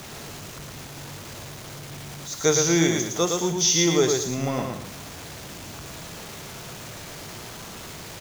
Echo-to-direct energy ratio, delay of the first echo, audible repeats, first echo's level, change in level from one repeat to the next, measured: −3.5 dB, 113 ms, 2, −4.0 dB, −11.0 dB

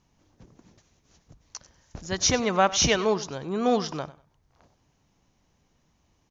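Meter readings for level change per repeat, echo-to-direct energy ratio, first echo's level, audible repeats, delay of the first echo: −13.0 dB, −18.0 dB, −18.0 dB, 2, 97 ms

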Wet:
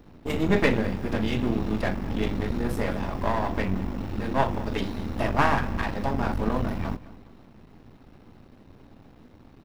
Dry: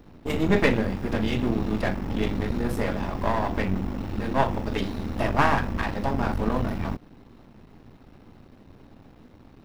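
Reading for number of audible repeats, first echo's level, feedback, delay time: 2, −19.0 dB, 38%, 208 ms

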